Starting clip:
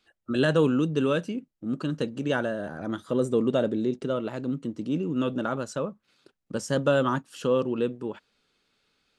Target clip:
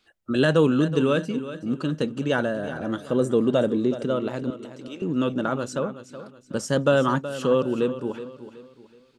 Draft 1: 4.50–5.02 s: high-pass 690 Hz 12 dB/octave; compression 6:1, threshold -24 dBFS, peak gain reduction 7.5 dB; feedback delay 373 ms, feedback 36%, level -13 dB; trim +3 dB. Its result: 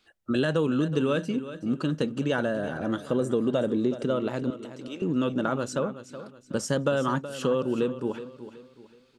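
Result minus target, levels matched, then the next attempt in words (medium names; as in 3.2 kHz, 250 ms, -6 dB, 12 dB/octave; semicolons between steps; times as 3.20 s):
compression: peak gain reduction +7.5 dB
4.50–5.02 s: high-pass 690 Hz 12 dB/octave; feedback delay 373 ms, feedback 36%, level -13 dB; trim +3 dB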